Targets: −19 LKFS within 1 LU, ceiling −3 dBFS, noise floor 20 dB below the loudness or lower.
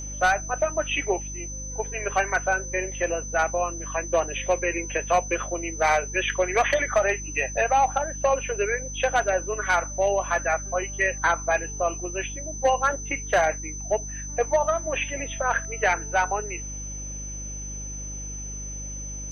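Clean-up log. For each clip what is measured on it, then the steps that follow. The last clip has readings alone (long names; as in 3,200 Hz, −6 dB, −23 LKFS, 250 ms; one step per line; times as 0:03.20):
mains hum 50 Hz; hum harmonics up to 300 Hz; level of the hum −34 dBFS; interfering tone 6,100 Hz; level of the tone −35 dBFS; integrated loudness −25.5 LKFS; sample peak −12.5 dBFS; target loudness −19.0 LKFS
→ hum removal 50 Hz, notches 6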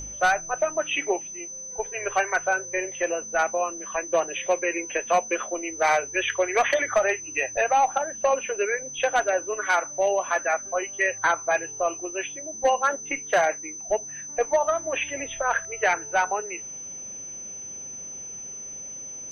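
mains hum none found; interfering tone 6,100 Hz; level of the tone −35 dBFS
→ notch filter 6,100 Hz, Q 30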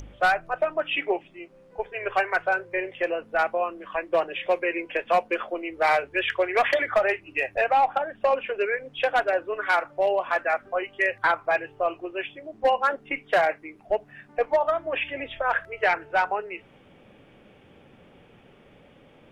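interfering tone none found; integrated loudness −25.5 LKFS; sample peak −13.0 dBFS; target loudness −19.0 LKFS
→ level +6.5 dB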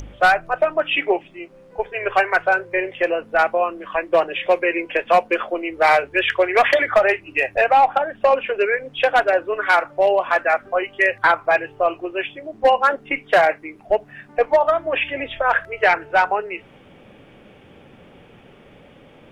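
integrated loudness −19.0 LKFS; sample peak −6.5 dBFS; background noise floor −48 dBFS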